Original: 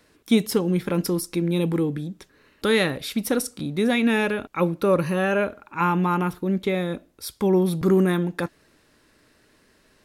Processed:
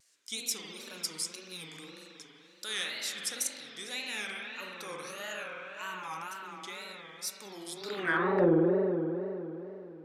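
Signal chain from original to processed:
spring reverb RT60 3.4 s, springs 46 ms, chirp 45 ms, DRR −2 dB
band-pass filter sweep 6,800 Hz → 480 Hz, 0:07.73–0:08.49
in parallel at −10 dB: soft clipping −26.5 dBFS, distortion −13 dB
on the sum: tape wow and flutter 150 cents
level +2 dB

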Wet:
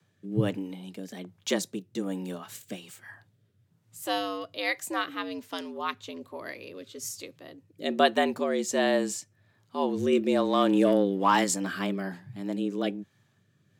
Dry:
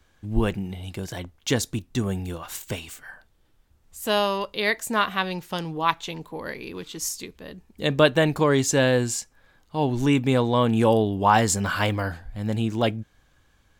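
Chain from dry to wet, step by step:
0:10.12–0:11.44: leveller curve on the samples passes 1
frequency shifter +93 Hz
rotating-speaker cabinet horn 1.2 Hz
level −4 dB

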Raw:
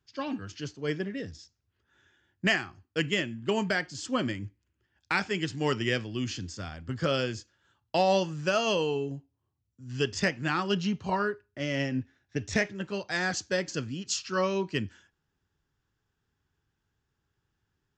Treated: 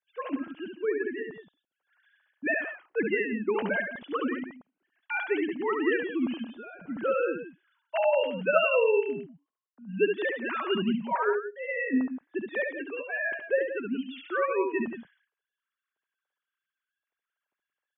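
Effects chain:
three sine waves on the formant tracks
loudspeakers that aren't time-aligned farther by 24 metres −5 dB, 60 metres −11 dB

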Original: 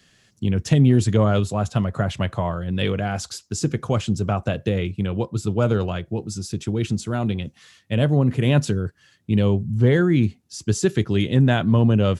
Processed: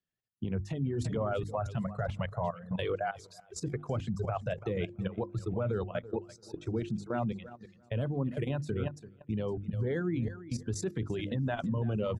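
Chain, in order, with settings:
noise reduction from a noise print of the clip's start 29 dB
repeating echo 335 ms, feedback 28%, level −11 dB
brickwall limiter −15 dBFS, peak gain reduction 9.5 dB
single-tap delay 847 ms −22 dB
reverb reduction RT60 2 s
0:05.38–0:07.98: low-pass filter 3,900 Hz 6 dB per octave
output level in coarse steps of 15 dB
high-shelf EQ 2,200 Hz −10.5 dB
mains-hum notches 50/100/150/200/250/300/350 Hz

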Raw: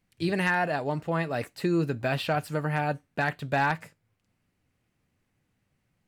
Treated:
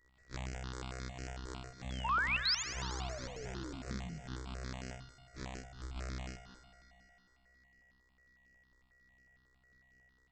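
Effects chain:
samples sorted by size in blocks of 256 samples
high-shelf EQ 4,300 Hz +5 dB
mains-hum notches 50/100/150/200/250/300/350/400/450/500 Hz
in parallel at +2 dB: brickwall limiter −16.5 dBFS, peak gain reduction 7.5 dB
on the sum: downward compressor 3 to 1, threshold −39 dBFS, peak gain reduction 16.5 dB
time stretch by phase vocoder 0.63×
sound drawn into the spectrogram fall, 0:00.70–0:01.56, 400–9,400 Hz −43 dBFS
steady tone 5,200 Hz −63 dBFS
change of speed 0.371×
sound drawn into the spectrogram rise, 0:02.04–0:02.63, 860–7,300 Hz −29 dBFS
on a send: echo machine with several playback heads 64 ms, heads all three, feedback 75%, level −18.5 dB
on the sum: step-sequenced phaser 11 Hz 710–3,600 Hz
level −1.5 dB

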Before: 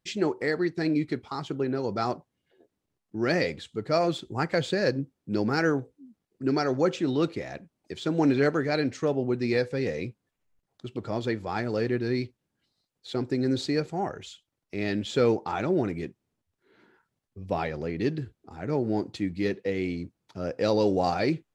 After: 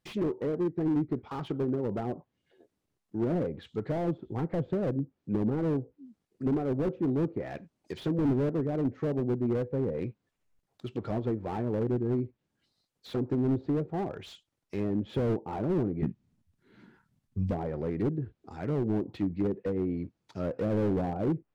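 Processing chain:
treble cut that deepens with the level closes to 500 Hz, closed at −24 dBFS
0:16.02–0:17.51: low shelf with overshoot 290 Hz +10 dB, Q 1.5
slew-rate limiting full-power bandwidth 19 Hz

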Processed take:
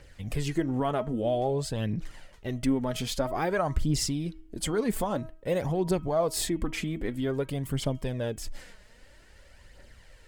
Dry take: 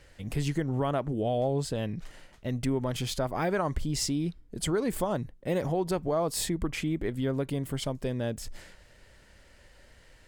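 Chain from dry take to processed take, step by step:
hum removal 319.1 Hz, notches 10
phase shifter 0.51 Hz, delay 4.9 ms, feedback 45%

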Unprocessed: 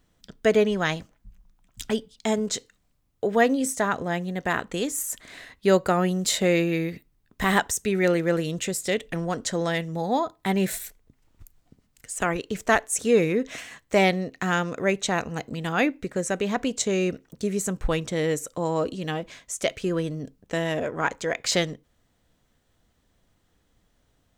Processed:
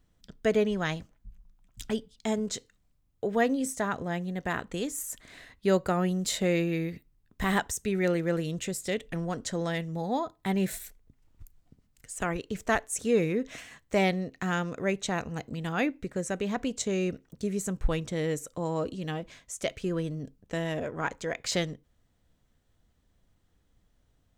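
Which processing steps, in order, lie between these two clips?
low-shelf EQ 170 Hz +7.5 dB
level −6.5 dB

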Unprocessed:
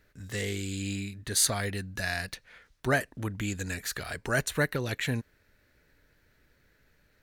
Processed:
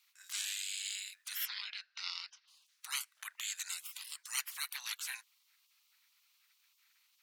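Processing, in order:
0:01.45–0:02.48: Chebyshev low-pass filter 5,200 Hz, order 4
gate on every frequency bin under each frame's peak −20 dB weak
Bessel high-pass filter 1,800 Hz, order 8
level +4.5 dB

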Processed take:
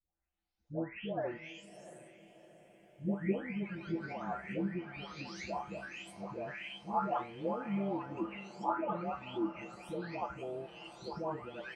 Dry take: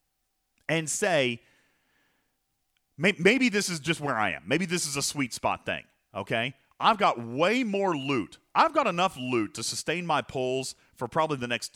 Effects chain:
every frequency bin delayed by itself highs late, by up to 749 ms
treble cut that deepens with the level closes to 1,100 Hz, closed at −26.5 dBFS
tuned comb filter 66 Hz, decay 0.26 s, harmonics odd, mix 80%
pitch-shifted copies added −5 semitones −18 dB
feedback delay with all-pass diffusion 683 ms, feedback 51%, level −15 dB

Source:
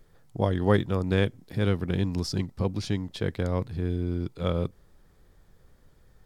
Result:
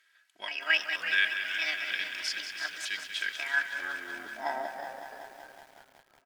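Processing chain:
pitch shifter gated in a rhythm +7.5 semitones, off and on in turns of 475 ms
spectral tilt +4.5 dB per octave
comb filter 3.1 ms, depth 69%
echo with shifted repeats 330 ms, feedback 50%, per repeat −130 Hz, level −10.5 dB
band-pass filter sweep 2,500 Hz → 760 Hz, 0:03.32–0:04.28
thirty-one-band graphic EQ 125 Hz −11 dB, 200 Hz +7 dB, 1,600 Hz +12 dB
on a send at −16.5 dB: convolution reverb RT60 0.55 s, pre-delay 76 ms
on the sum: feedback echo at a low word length 187 ms, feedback 80%, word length 9 bits, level −9 dB
level +1 dB

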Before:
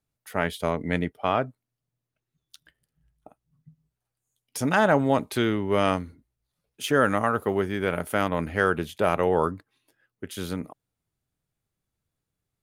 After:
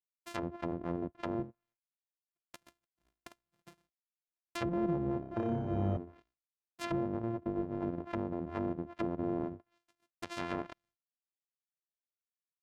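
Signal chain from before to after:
samples sorted by size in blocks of 128 samples
treble cut that deepens with the level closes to 360 Hz, closed at −22.5 dBFS
downward expander −60 dBFS
low-shelf EQ 430 Hz −9.5 dB
brickwall limiter −23.5 dBFS, peak gain reduction 7 dB
0:05.19–0:05.97: flutter between parallel walls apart 5.2 metres, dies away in 0.94 s

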